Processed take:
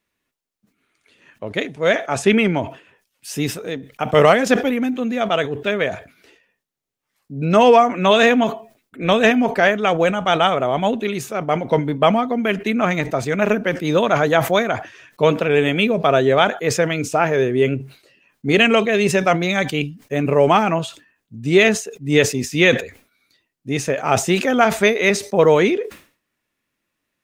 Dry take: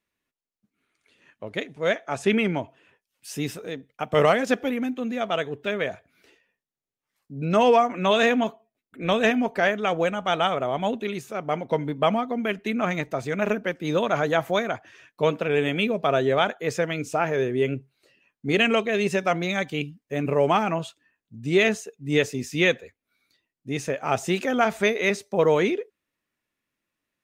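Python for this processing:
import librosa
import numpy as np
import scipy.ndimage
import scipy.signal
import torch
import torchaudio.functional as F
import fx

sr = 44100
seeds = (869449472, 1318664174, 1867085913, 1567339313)

y = fx.sustainer(x, sr, db_per_s=140.0)
y = F.gain(torch.from_numpy(y), 6.5).numpy()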